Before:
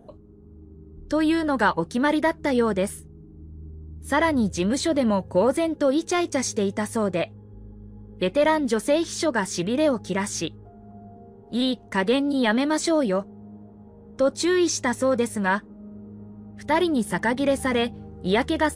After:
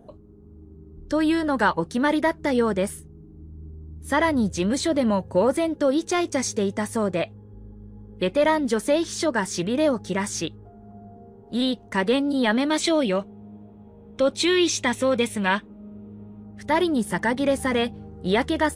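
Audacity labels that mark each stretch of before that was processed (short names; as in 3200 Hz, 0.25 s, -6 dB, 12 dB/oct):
12.700000	16.430000	band shelf 2900 Hz +10 dB 1 oct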